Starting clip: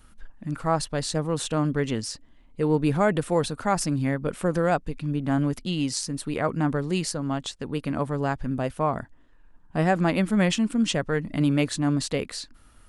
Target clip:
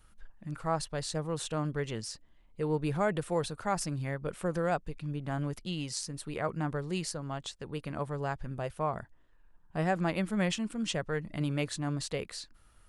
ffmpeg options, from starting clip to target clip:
-af "equalizer=f=260:t=o:w=0.28:g=-12,volume=0.447"

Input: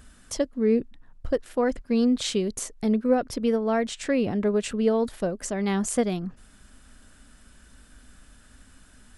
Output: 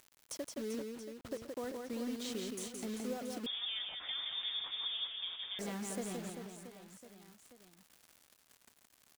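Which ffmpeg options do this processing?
-filter_complex "[0:a]highpass=170,acompressor=threshold=0.00562:ratio=2.5,acrusher=bits=7:mix=0:aa=0.000001,aecho=1:1:170|391|678.3|1052|1537:0.631|0.398|0.251|0.158|0.1,asettb=1/sr,asplit=3[s0][s1][s2];[s0]atrim=end=3.464[s3];[s1]atrim=start=3.46:end=5.59,asetpts=PTS-STARTPTS,afade=t=in:d=0.004:c=qsin,afade=t=out:st=2.126:d=0.004:c=qsin,lowpass=f=3200:t=q:w=0.5098,lowpass=f=3200:t=q:w=0.6013,lowpass=f=3200:t=q:w=0.9,lowpass=f=3200:t=q:w=2.563,afreqshift=-3800[s4];[s2]atrim=start=5.586[s5];[s3][s4]acrossfade=d=0.004:c1=hsin:c2=qsin[s6];[s6][s5]acrossfade=d=0.004:c1=qsin:c2=hsin,volume=0.75"

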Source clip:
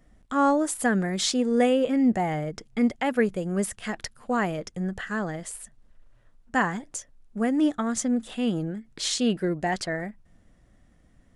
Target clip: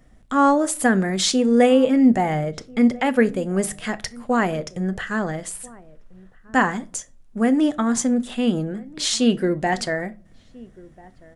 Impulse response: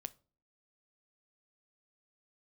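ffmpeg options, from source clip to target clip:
-filter_complex "[0:a]asplit=2[s0][s1];[s1]adelay=1341,volume=0.0708,highshelf=f=4000:g=-30.2[s2];[s0][s2]amix=inputs=2:normalize=0[s3];[1:a]atrim=start_sample=2205[s4];[s3][s4]afir=irnorm=-1:irlink=0,volume=2.82"

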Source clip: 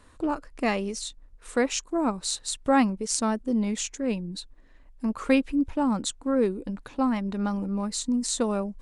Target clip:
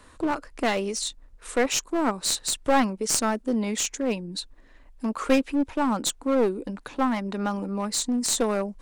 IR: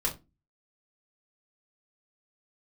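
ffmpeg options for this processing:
-filter_complex "[0:a]lowshelf=f=270:g=-4.5,acrossover=split=210[s0][s1];[s0]acompressor=threshold=0.00447:ratio=6[s2];[s2][s1]amix=inputs=2:normalize=0,aeval=exprs='clip(val(0),-1,0.0398)':c=same,volume=1.88"

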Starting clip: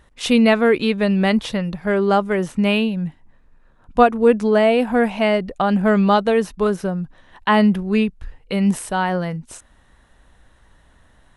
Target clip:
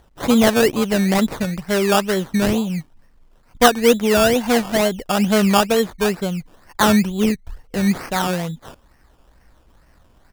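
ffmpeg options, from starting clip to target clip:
-af "atempo=1.1,acrusher=samples=17:mix=1:aa=0.000001:lfo=1:lforange=10.2:lforate=2.2"

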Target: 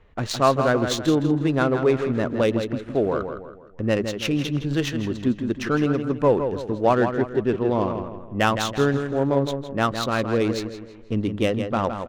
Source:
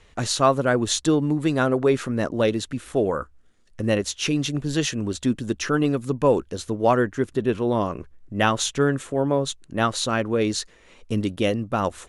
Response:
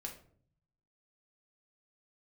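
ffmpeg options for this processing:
-af "aecho=1:1:163|326|489|652|815:0.422|0.173|0.0709|0.0291|0.0119,adynamicsmooth=sensitivity=2:basefreq=1900"

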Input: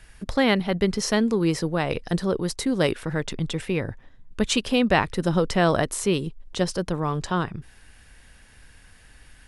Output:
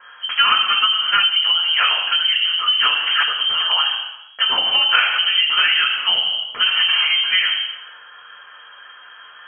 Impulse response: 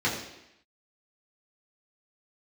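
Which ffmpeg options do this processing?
-filter_complex "[0:a]asettb=1/sr,asplit=3[s0][s1][s2];[s0]atrim=end=6.654[s3];[s1]atrim=start=6.65:end=7.05,asetpts=PTS-STARTPTS,afade=t=in:d=0.004:c=qsin,afade=t=out:st=0.396:d=0.004:c=qsin,asplit=2[s4][s5];[s5]highpass=f=720:p=1,volume=79.4,asoftclip=type=tanh:threshold=0.237[s6];[s4][s6]amix=inputs=2:normalize=0,lowpass=f=1000:p=1,volume=0.501[s7];[s2]atrim=start=7.046[s8];[s3][s7]acrossfade=d=0.004:c1=hsin:c2=qsin[s9];[s9][s8]acrossfade=d=0.004:c1=qsin:c2=hsin[s10];[1:a]atrim=start_sample=2205[s11];[s10][s11]afir=irnorm=-1:irlink=0,asettb=1/sr,asplit=3[s12][s13][s14];[s12]atrim=end=2.984[s15];[s13]atrim=start=2.98:end=3.72,asetpts=PTS-STARTPTS,afade=t=in:d=0.004:c=qsin,afade=t=out:st=0.736:d=0.004:c=qsin,aeval=exprs='0.398*(abs(mod(val(0)/0.398+3,4)-2)-1)':c=same[s16];[s14]atrim=start=3.716[s17];[s15][s16]acrossfade=d=0.004:c1=hsin:c2=qsin[s18];[s18][s17]acrossfade=d=0.004:c1=qsin:c2=hsin,acompressor=threshold=0.316:ratio=6,lowpass=f=2800:t=q:w=0.5098,lowpass=f=2800:t=q:w=0.6013,lowpass=f=2800:t=q:w=0.9,lowpass=f=2800:t=q:w=2.563,afreqshift=-3300,equalizer=f=1300:t=o:w=1.7:g=14.5,volume=0.355"

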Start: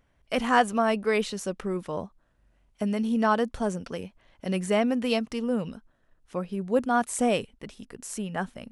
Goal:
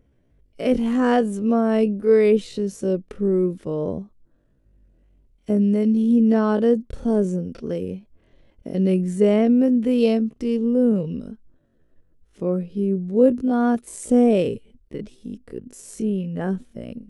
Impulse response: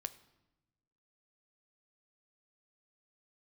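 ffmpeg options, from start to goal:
-af "lowshelf=f=610:t=q:w=1.5:g=11,atempo=0.51,volume=0.668"

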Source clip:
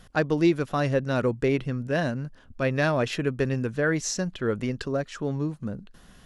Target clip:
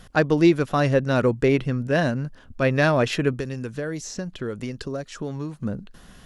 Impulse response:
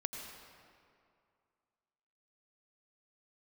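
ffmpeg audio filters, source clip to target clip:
-filter_complex "[0:a]asettb=1/sr,asplit=3[s0][s1][s2];[s0]atrim=end=3.334[s3];[s1]atrim=start=3.33:end=5.58,asetpts=PTS-STARTPTS,afade=t=in:d=0.004:c=qsin,afade=t=out:st=2.246:d=0.004:c=qsin,acrossover=split=870|4000[s4][s5][s6];[s4]acompressor=threshold=0.0224:ratio=4[s7];[s5]acompressor=threshold=0.00447:ratio=4[s8];[s6]acompressor=threshold=0.00708:ratio=4[s9];[s7][s8][s9]amix=inputs=3:normalize=0[s10];[s2]atrim=start=5.576[s11];[s3][s10]acrossfade=d=0.004:c1=hsin:c2=qsin[s12];[s12][s11]acrossfade=d=0.004:c1=qsin:c2=hsin,volume=1.68"

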